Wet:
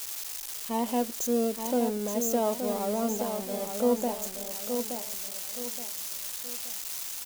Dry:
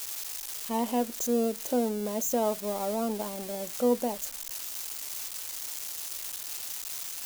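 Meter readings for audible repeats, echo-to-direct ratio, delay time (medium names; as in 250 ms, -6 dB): 3, -6.5 dB, 873 ms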